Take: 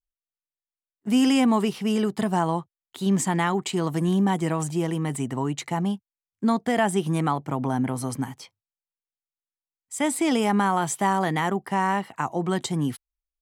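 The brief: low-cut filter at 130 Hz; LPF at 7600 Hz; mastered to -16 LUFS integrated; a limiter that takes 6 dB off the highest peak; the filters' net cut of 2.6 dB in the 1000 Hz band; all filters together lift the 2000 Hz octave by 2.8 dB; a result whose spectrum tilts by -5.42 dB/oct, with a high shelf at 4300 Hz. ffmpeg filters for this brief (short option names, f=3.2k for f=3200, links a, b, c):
-af "highpass=130,lowpass=7.6k,equalizer=f=1k:t=o:g=-4,equalizer=f=2k:t=o:g=6,highshelf=f=4.3k:g=-8.5,volume=10.5dB,alimiter=limit=-4.5dB:level=0:latency=1"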